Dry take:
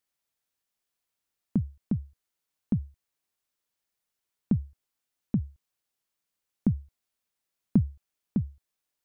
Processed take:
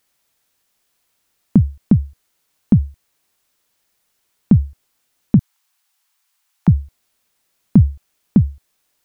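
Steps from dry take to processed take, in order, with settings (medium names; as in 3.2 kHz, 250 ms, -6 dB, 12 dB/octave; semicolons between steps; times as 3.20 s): 5.39–6.68 s: steep high-pass 750 Hz 48 dB/octave; loudness maximiser +17.5 dB; trim -1 dB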